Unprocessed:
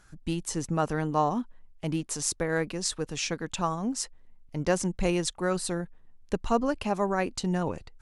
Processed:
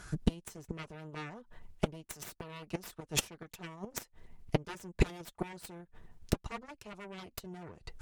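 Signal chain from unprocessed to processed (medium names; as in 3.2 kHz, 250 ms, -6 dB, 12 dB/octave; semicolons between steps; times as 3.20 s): Chebyshev shaper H 2 -34 dB, 6 -7 dB, 7 -10 dB, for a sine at -10 dBFS; inverted gate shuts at -18 dBFS, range -29 dB; comb of notches 270 Hz; trim +9 dB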